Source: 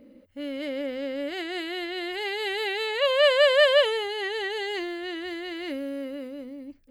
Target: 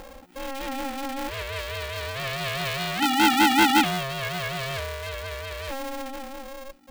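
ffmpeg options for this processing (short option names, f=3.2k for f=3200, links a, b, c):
-af "acompressor=mode=upward:threshold=-35dB:ratio=2.5,aeval=exprs='val(0)*sgn(sin(2*PI*270*n/s))':c=same"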